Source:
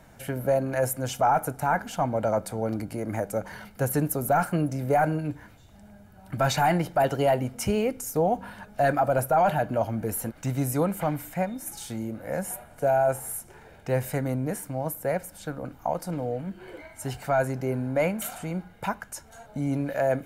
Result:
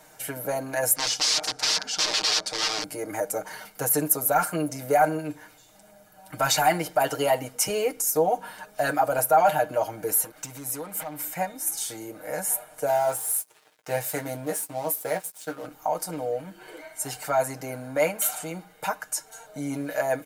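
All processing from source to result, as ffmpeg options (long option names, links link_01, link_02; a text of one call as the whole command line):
ffmpeg -i in.wav -filter_complex "[0:a]asettb=1/sr,asplit=3[link_01][link_02][link_03];[link_01]atrim=end=0.954[link_04];[link_02]atrim=start=0.95:end=2.84,asetpts=PTS-STARTPTS,afade=type=in:duration=0.004:curve=qsin,afade=type=out:start_time=1.886:duration=0.004:curve=qsin,aeval=exprs='(mod(21.1*val(0)+1,2)-1)/21.1':channel_layout=same,lowpass=frequency=5000:width_type=q:width=2.7[link_05];[link_03]atrim=start=2.836[link_06];[link_04][link_05]acrossfade=duration=0.004:curve1=hsin:curve2=qsin[link_07];[link_07][link_06]acrossfade=duration=0.004:curve1=qsin:curve2=hsin,asettb=1/sr,asplit=3[link_08][link_09][link_10];[link_08]atrim=end=10.204[link_11];[link_09]atrim=start=10.2:end=11.28,asetpts=PTS-STARTPTS,afade=type=in:duration=0.004:curve=qsin,afade=type=out:start_time=1.076:duration=0.004:curve=qsin,acompressor=threshold=-31dB:ratio=6:attack=3.2:release=140:knee=1:detection=peak,volume=30.5dB,asoftclip=hard,volume=-30.5dB[link_12];[link_10]atrim=start=11.276[link_13];[link_11][link_12]acrossfade=duration=0.004:curve1=hsin:curve2=qsin[link_14];[link_14][link_13]acrossfade=duration=0.004:curve1=qsin:curve2=hsin,asettb=1/sr,asplit=3[link_15][link_16][link_17];[link_15]atrim=end=12.884[link_18];[link_16]atrim=start=12.88:end=15.66,asetpts=PTS-STARTPTS,afade=type=in:duration=0.004:curve=qsin,afade=type=out:start_time=2.776:duration=0.004:curve=qsin,aeval=exprs='sgn(val(0))*max(abs(val(0))-0.00531,0)':channel_layout=same,highpass=74,asplit=2[link_19][link_20];[link_20]adelay=17,volume=-8.5dB[link_21];[link_19][link_21]amix=inputs=2:normalize=0,atrim=end_sample=122598[link_22];[link_17]atrim=start=15.656[link_23];[link_18][link_22]acrossfade=duration=0.004:curve1=hsin:curve2=qsin[link_24];[link_24][link_23]acrossfade=duration=0.004:curve1=qsin:curve2=hsin,bass=frequency=250:gain=-15,treble=frequency=4000:gain=8,aecho=1:1:6.5:0.81" out.wav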